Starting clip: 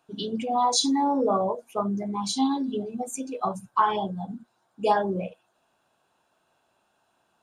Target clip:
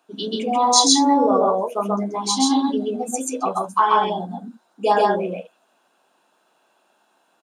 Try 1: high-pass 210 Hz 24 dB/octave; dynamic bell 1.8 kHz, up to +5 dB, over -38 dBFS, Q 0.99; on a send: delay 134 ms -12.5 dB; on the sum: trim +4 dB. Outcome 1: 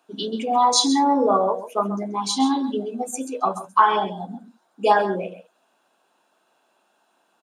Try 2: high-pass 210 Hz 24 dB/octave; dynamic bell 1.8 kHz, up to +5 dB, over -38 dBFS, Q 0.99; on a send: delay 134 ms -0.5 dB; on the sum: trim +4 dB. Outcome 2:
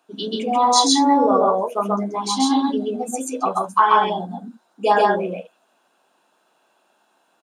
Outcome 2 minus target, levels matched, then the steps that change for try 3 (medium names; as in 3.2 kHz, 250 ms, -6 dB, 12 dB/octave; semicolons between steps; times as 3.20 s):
8 kHz band -4.5 dB
change: dynamic bell 6.2 kHz, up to +5 dB, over -38 dBFS, Q 0.99